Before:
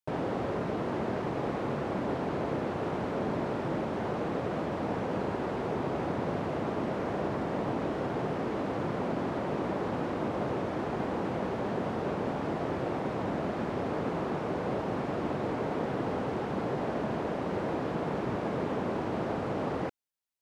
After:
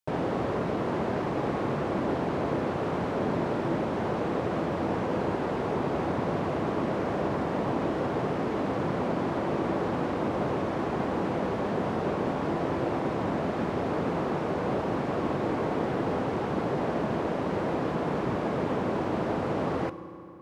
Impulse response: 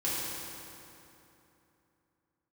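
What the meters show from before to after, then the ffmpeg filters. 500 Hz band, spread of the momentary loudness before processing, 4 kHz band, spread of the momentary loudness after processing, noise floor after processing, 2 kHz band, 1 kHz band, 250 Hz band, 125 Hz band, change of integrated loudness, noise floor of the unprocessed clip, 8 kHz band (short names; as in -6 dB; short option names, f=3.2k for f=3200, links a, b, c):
+3.5 dB, 1 LU, +3.0 dB, 1 LU, -31 dBFS, +3.0 dB, +3.5 dB, +3.5 dB, +3.5 dB, +3.5 dB, -34 dBFS, n/a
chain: -filter_complex "[0:a]asplit=2[a][b];[b]equalizer=f=1.1k:w=5.6:g=10[c];[1:a]atrim=start_sample=2205,adelay=12[d];[c][d]afir=irnorm=-1:irlink=0,volume=-21.5dB[e];[a][e]amix=inputs=2:normalize=0,volume=3dB"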